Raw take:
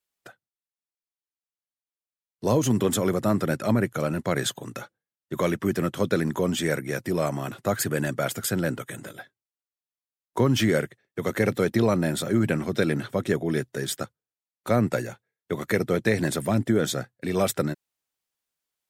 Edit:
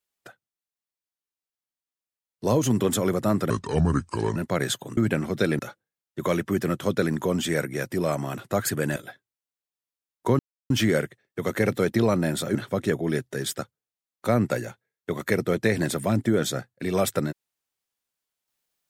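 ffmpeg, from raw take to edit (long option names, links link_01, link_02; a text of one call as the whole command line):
ffmpeg -i in.wav -filter_complex "[0:a]asplit=8[link_01][link_02][link_03][link_04][link_05][link_06][link_07][link_08];[link_01]atrim=end=3.504[link_09];[link_02]atrim=start=3.5:end=4.12,asetpts=PTS-STARTPTS,asetrate=31752,aresample=44100[link_10];[link_03]atrim=start=4.116:end=4.732[link_11];[link_04]atrim=start=12.348:end=12.972[link_12];[link_05]atrim=start=4.728:end=8.102[link_13];[link_06]atrim=start=9.068:end=10.5,asetpts=PTS-STARTPTS,afade=type=out:start_time=1.428:duration=0.004:curve=hsin,apad=pad_dur=0.31[link_14];[link_07]atrim=start=10.5:end=12.352,asetpts=PTS-STARTPTS,afade=type=in:duration=0.004:curve=hsin[link_15];[link_08]atrim=start=12.968[link_16];[link_09][link_10]acrossfade=duration=0.004:curve1=hsin:curve2=hsin[link_17];[link_17][link_11]acrossfade=duration=0.004:curve1=hsin:curve2=hsin[link_18];[link_18][link_12]acrossfade=duration=0.004:curve1=hsin:curve2=hsin[link_19];[link_19][link_13]acrossfade=duration=0.004:curve1=hsin:curve2=hsin[link_20];[link_14][link_15]concat=n=2:v=0:a=1[link_21];[link_20][link_21]acrossfade=duration=0.004:curve1=hsin:curve2=hsin[link_22];[link_22][link_16]acrossfade=duration=0.004:curve1=hsin:curve2=hsin" out.wav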